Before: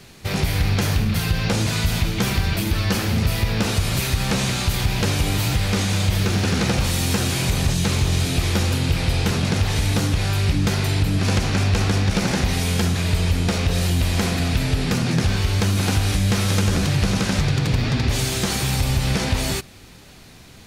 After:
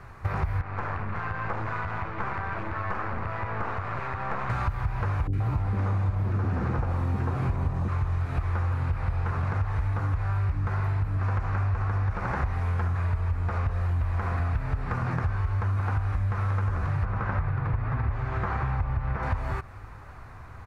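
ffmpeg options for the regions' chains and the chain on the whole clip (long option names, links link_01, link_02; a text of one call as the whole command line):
ffmpeg -i in.wav -filter_complex "[0:a]asettb=1/sr,asplit=3[link_01][link_02][link_03];[link_01]atrim=end=0.614[link_04];[link_02]atrim=start=0.61:end=4.5,asetpts=PTS-STARTPTS,afade=type=in:duration=0.004:curve=qsin,afade=type=out:start_time=3.886:duration=0.004:curve=qsin,highpass=200,lowpass=2900,aeval=exprs='(tanh(14.1*val(0)+0.75)-tanh(0.75))/14.1':channel_layout=same[link_05];[link_03]atrim=start=4.496[link_06];[link_04][link_05]acrossfade=duration=0.004:curve1=hsin:curve2=qsin[link_07];[link_07][link_06]acrossfade=duration=0.004:curve1=qsin:curve2=hsin,asettb=1/sr,asplit=3[link_08][link_09][link_10];[link_08]atrim=end=5.274[link_11];[link_09]atrim=start=5.27:end=7.88,asetpts=PTS-STARTPTS,afade=type=in:duration=0.004:curve=qsin,afade=type=out:start_time=2.606:duration=0.004:curve=qsin,equalizer=frequency=280:width_type=o:width=2:gain=12.5,acrossover=split=410|1600[link_12][link_13][link_14];[link_14]adelay=60[link_15];[link_13]adelay=130[link_16];[link_12][link_16][link_15]amix=inputs=3:normalize=0,atrim=end_sample=115101[link_17];[link_10]atrim=start=7.876[link_18];[link_11][link_17]acrossfade=duration=0.004:curve1=hsin:curve2=qsin[link_19];[link_19][link_18]acrossfade=duration=0.004:curve1=qsin:curve2=hsin,asettb=1/sr,asplit=3[link_20][link_21][link_22];[link_20]atrim=end=17.054[link_23];[link_21]atrim=start=17.05:end=19.23,asetpts=PTS-STARTPTS,afade=type=in:duration=0.004:curve=qsin,afade=type=out:start_time=2.176:duration=0.004:curve=qsin,lowpass=2700,acrusher=bits=9:mode=log:mix=0:aa=0.000001[link_24];[link_22]atrim=start=19.226[link_25];[link_23][link_24]acrossfade=duration=0.004:curve1=hsin:curve2=qsin[link_26];[link_26][link_25]acrossfade=duration=0.004:curve1=qsin:curve2=hsin,acrossover=split=4500[link_27][link_28];[link_28]acompressor=threshold=-36dB:ratio=4:attack=1:release=60[link_29];[link_27][link_29]amix=inputs=2:normalize=0,firequalizer=gain_entry='entry(100,0);entry(180,-15);entry(1100,4);entry(3200,-25)':delay=0.05:min_phase=1,acompressor=threshold=-30dB:ratio=6,volume=5.5dB" out.wav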